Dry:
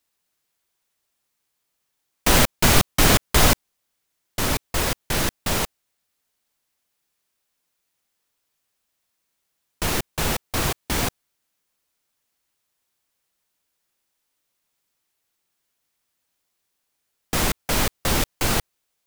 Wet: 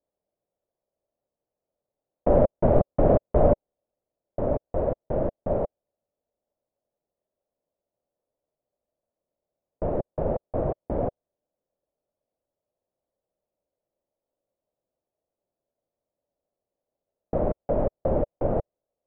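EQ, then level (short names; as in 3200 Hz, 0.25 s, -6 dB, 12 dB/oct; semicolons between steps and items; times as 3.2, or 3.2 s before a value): synth low-pass 590 Hz, resonance Q 4.9; air absorption 440 m; -3.5 dB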